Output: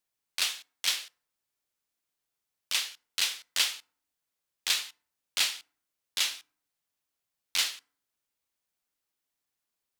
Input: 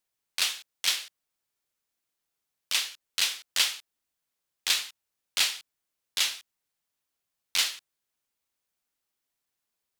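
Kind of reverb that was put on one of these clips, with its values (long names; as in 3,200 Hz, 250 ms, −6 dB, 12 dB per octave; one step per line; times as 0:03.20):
feedback delay network reverb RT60 0.55 s, low-frequency decay 1.3×, high-frequency decay 0.55×, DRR 20 dB
level −2 dB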